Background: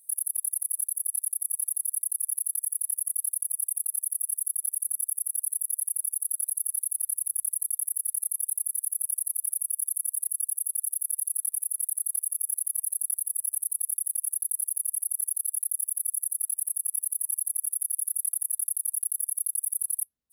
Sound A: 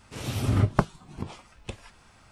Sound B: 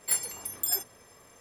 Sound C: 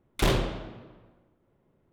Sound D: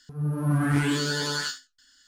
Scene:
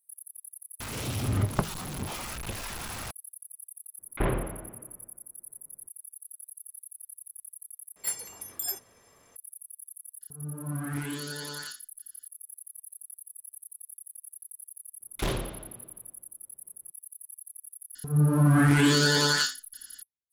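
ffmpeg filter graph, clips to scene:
-filter_complex "[3:a]asplit=2[s0][s1];[4:a]asplit=2[s2][s3];[0:a]volume=0.15[s4];[1:a]aeval=exprs='val(0)+0.5*0.0473*sgn(val(0))':c=same[s5];[s0]lowpass=f=2200:w=0.5412,lowpass=f=2200:w=1.3066[s6];[s3]alimiter=level_in=7.94:limit=0.891:release=50:level=0:latency=1[s7];[s4]asplit=2[s8][s9];[s8]atrim=end=7.964[s10];[2:a]atrim=end=1.4,asetpts=PTS-STARTPTS,volume=0.596[s11];[s9]atrim=start=9.356[s12];[s5]atrim=end=2.31,asetpts=PTS-STARTPTS,volume=0.501,afade=t=in:d=0.004:c=hsin,afade=t=out:st=2.306:d=0.004:c=hsin,adelay=800[s13];[s6]atrim=end=1.92,asetpts=PTS-STARTPTS,volume=0.708,afade=t=in:d=0.02,afade=t=out:st=1.9:d=0.02,adelay=3980[s14];[s2]atrim=end=2.07,asetpts=PTS-STARTPTS,volume=0.299,afade=t=in:d=0.004:c=hsin,afade=t=out:st=2.066:d=0.004:c=hsin,adelay=10210[s15];[s1]atrim=end=1.92,asetpts=PTS-STARTPTS,volume=0.501,afade=t=in:d=0.02,afade=t=out:st=1.9:d=0.02,adelay=15000[s16];[s7]atrim=end=2.07,asetpts=PTS-STARTPTS,volume=0.237,afade=t=in:d=0.004:c=hsin,afade=t=out:st=2.066:d=0.004:c=hsin,adelay=17950[s17];[s10][s11]acrossfade=d=0.004:c1=hsin:c2=hsin[s18];[s18][s12]acrossfade=d=0.004:c1=hsin:c2=hsin[s19];[s19][s13][s14][s15][s16][s17]amix=inputs=6:normalize=0"

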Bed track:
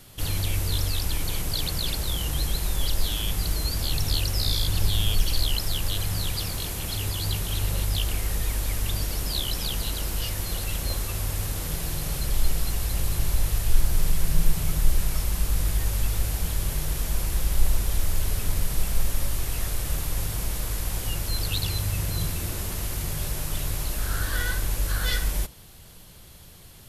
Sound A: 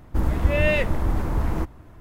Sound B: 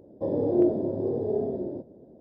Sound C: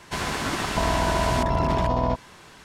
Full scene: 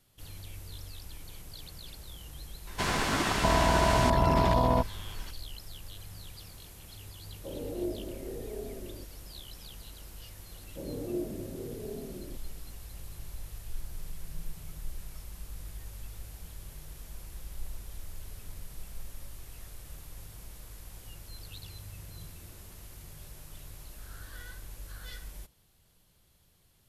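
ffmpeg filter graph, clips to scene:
-filter_complex "[2:a]asplit=2[s0][s1];[0:a]volume=0.119[s2];[s1]equalizer=f=150:t=o:w=2.1:g=10.5[s3];[3:a]atrim=end=2.64,asetpts=PTS-STARTPTS,volume=0.841,afade=t=in:d=0.004:c=hsin,afade=t=out:st=2.636:d=0.004:c=hsin,adelay=2670[s4];[s0]atrim=end=2.2,asetpts=PTS-STARTPTS,volume=0.224,afade=t=in:d=0.004:c=hsin,afade=t=out:st=2.196:d=0.004:c=hsin,adelay=7230[s5];[s3]atrim=end=2.2,asetpts=PTS-STARTPTS,volume=0.141,afade=t=in:d=0.004:c=hsin,afade=t=out:st=2.196:d=0.004:c=hsin,adelay=10550[s6];[s2][s4][s5][s6]amix=inputs=4:normalize=0"

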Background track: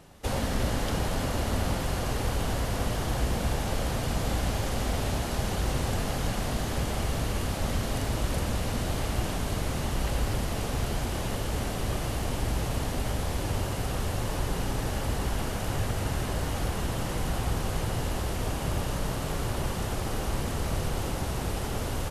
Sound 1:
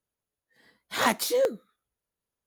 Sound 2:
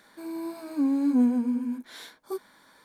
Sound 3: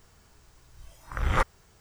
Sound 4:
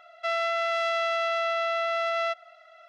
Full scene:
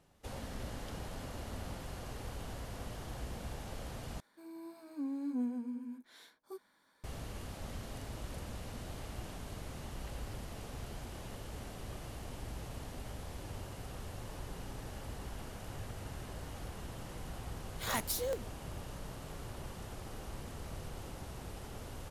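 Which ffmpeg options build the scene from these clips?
-filter_complex "[0:a]volume=0.178[s0];[1:a]highshelf=f=6100:g=11[s1];[s0]asplit=2[s2][s3];[s2]atrim=end=4.204[s4];[2:a]atrim=end=2.84,asetpts=PTS-STARTPTS,volume=0.2[s5];[s3]atrim=start=7.036[s6];[s1]atrim=end=2.46,asetpts=PTS-STARTPTS,volume=0.224,afade=t=in:d=0.004:c=hsin,afade=t=out:st=2.456:d=0.004:c=hsin,adelay=16880[s7];[s4][s5]acrossfade=d=0.004:c1=hsin:c2=hsin[s8];[s8][s6]acrossfade=d=0.004:c1=hsin:c2=hsin[s9];[s9][s7]amix=inputs=2:normalize=0"

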